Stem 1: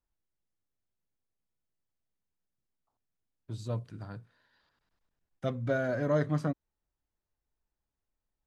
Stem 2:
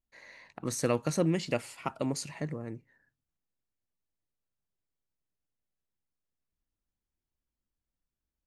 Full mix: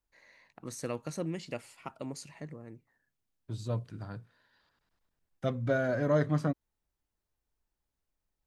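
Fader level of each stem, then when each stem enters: +1.0, −8.0 decibels; 0.00, 0.00 seconds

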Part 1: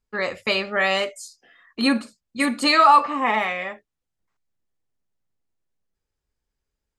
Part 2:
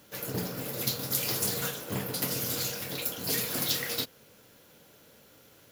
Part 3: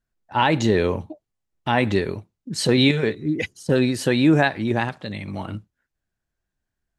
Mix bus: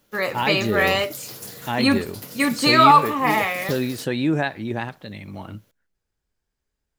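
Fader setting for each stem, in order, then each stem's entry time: +1.0, −7.5, −5.0 decibels; 0.00, 0.00, 0.00 seconds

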